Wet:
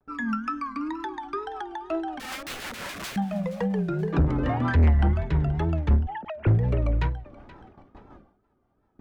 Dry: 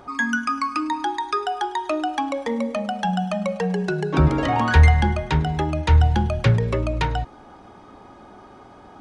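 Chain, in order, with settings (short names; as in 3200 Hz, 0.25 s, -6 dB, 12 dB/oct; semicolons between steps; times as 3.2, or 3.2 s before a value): 6.06–6.47 sine-wave speech; tilt -3 dB/oct; 2.2–3.16 wrapped overs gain 24 dB; rotary speaker horn 5.5 Hz; soft clip -8 dBFS, distortion -7 dB; bell 1600 Hz +5 dB 2.1 oct; thinning echo 0.476 s, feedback 34%, high-pass 510 Hz, level -17 dB; wow and flutter 120 cents; gate with hold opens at -31 dBFS; ending taper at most 110 dB/s; gain -7 dB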